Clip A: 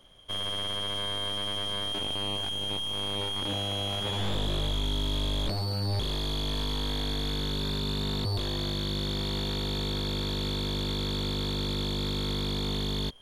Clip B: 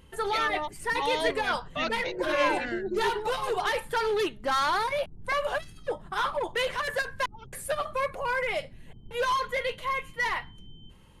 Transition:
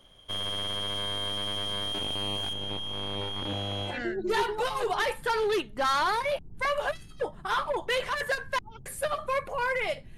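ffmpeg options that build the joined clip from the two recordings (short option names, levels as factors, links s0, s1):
-filter_complex "[0:a]asettb=1/sr,asplit=3[s0][s1][s2];[s0]atrim=end=2.534[s3];[s1]atrim=start=2.53:end=4,asetpts=PTS-STARTPTS,afade=t=in:d=0.004:c=qsin,afade=t=out:st=1.466:d=0.004:c=qsin,lowpass=f=3000:p=1[s4];[s2]atrim=start=3.996[s5];[s3][s4]acrossfade=d=0.004:c1=hsin:c2=qsin[s6];[s6][s5]acrossfade=d=0.004:c1=qsin:c2=hsin,apad=whole_dur=10.17,atrim=end=10.17,atrim=end=4,asetpts=PTS-STARTPTS[s7];[1:a]atrim=start=2.51:end=8.84,asetpts=PTS-STARTPTS[s8];[s7][s8]acrossfade=d=0.16:c1=tri:c2=tri"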